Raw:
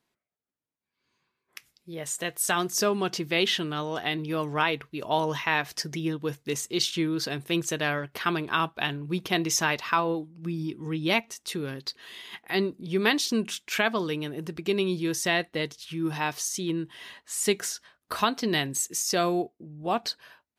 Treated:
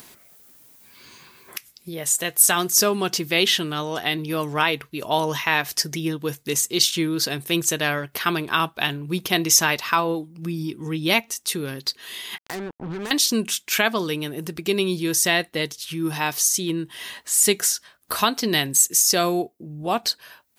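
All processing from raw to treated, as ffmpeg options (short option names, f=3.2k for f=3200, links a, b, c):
-filter_complex "[0:a]asettb=1/sr,asplit=3[a][b][c];[a]atrim=end=12.384[d];[b]atrim=start=12.38:end=13.11,asetpts=PTS-STARTPTS,afade=t=in:d=0.004:c=qsin,afade=t=out:st=0.726:d=0.004:c=qsin,lowpass=f=1.7k:w=0.5412,lowpass=f=1.7k:w=1.3066,acompressor=threshold=-32dB:ratio=8:attack=3.2:release=140:knee=1:detection=peak,acrusher=bits=5:mix=0:aa=0.5[e];[c]atrim=start=13.106[f];[d][e]acrossfade=d=0.004:c1=hsin:c2=qsin[g];[g][f]acrossfade=d=0.004:c1=qsin:c2=hsin,aemphasis=mode=production:type=50kf,acompressor=mode=upward:threshold=-32dB:ratio=2.5,volume=3.5dB"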